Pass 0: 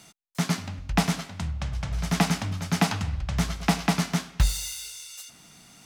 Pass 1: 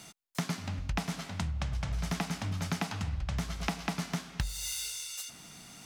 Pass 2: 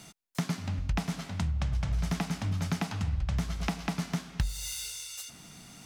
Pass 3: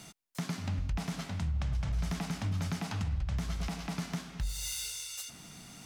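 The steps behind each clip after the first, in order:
downward compressor 12 to 1, threshold −31 dBFS, peak gain reduction 16 dB; level +1.5 dB
low-shelf EQ 290 Hz +5.5 dB; level −1 dB
brickwall limiter −25.5 dBFS, peak gain reduction 11.5 dB

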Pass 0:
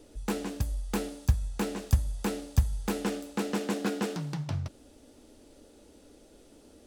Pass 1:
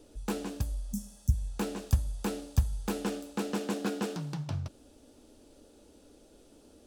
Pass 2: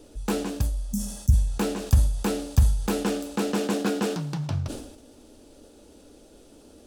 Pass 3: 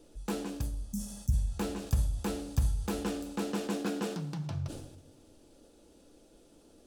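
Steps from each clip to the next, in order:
healed spectral selection 0:00.84–0:01.45, 250–5,200 Hz; parametric band 2,000 Hz −5.5 dB 0.29 octaves; level −2 dB
level that may fall only so fast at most 65 dB per second; level +6 dB
rectangular room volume 2,900 cubic metres, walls furnished, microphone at 0.77 metres; level −8.5 dB

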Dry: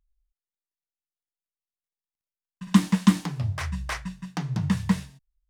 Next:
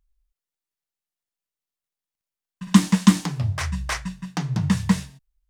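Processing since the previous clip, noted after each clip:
dynamic equaliser 6,900 Hz, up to +5 dB, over −48 dBFS, Q 0.86
level +3.5 dB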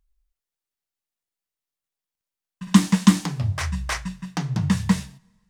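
coupled-rooms reverb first 0.36 s, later 1.8 s, from −17 dB, DRR 19 dB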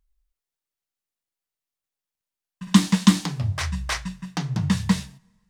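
dynamic equaliser 3,900 Hz, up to +5 dB, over −42 dBFS, Q 1.5
level −1 dB

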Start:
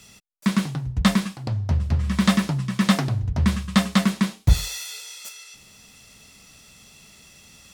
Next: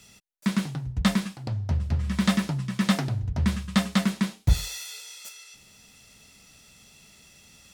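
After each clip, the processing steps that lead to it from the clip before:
notch filter 1,100 Hz, Q 14
level −4 dB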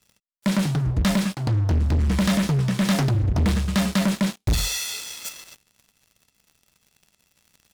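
low-shelf EQ 180 Hz +3 dB
leveller curve on the samples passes 5
level −8.5 dB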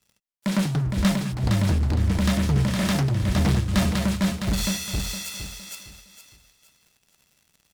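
on a send: repeating echo 462 ms, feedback 30%, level −3.5 dB
on the sum: amplitude modulation by smooth noise, depth 55%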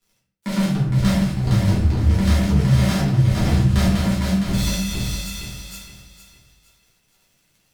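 rectangular room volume 100 cubic metres, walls mixed, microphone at 1.8 metres
level −6 dB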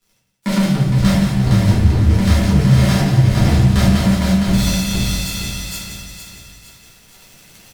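camcorder AGC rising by 5.3 dB per second
repeating echo 176 ms, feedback 52%, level −9 dB
level +4 dB

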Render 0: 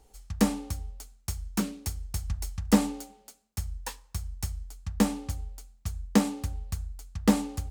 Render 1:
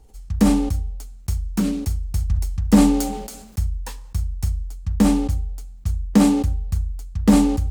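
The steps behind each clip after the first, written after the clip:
low-shelf EQ 290 Hz +10.5 dB
level that may fall only so fast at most 48 dB per second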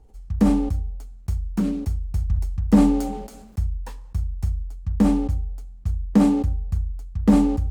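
high-shelf EQ 2,300 Hz −11 dB
level −1.5 dB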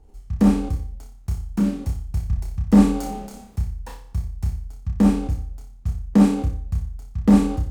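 flutter between parallel walls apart 5.1 metres, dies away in 0.43 s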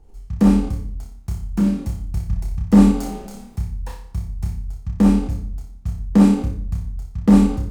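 rectangular room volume 690 cubic metres, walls furnished, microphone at 0.81 metres
level +1 dB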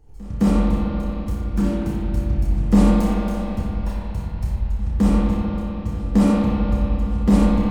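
spectral magnitudes quantised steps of 15 dB
backwards echo 213 ms −22 dB
spring reverb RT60 3.8 s, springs 36/43 ms, chirp 30 ms, DRR −5 dB
level −2.5 dB

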